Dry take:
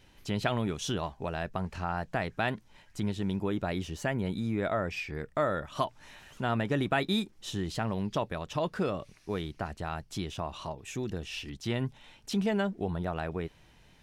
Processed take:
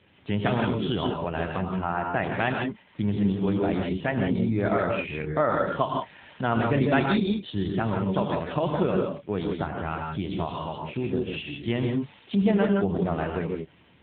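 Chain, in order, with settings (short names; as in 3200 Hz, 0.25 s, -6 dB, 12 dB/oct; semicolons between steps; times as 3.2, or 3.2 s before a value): non-linear reverb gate 0.19 s rising, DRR 0.5 dB; gain +5 dB; AMR-NB 7.4 kbps 8000 Hz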